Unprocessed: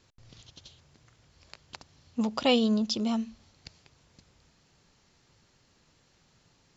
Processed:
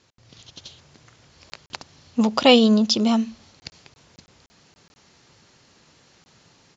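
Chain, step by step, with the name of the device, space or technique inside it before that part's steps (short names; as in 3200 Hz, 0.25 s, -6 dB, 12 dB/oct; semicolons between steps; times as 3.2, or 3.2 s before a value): call with lost packets (HPF 140 Hz 6 dB/oct; downsampling 16000 Hz; AGC gain up to 6 dB; packet loss); gain +4.5 dB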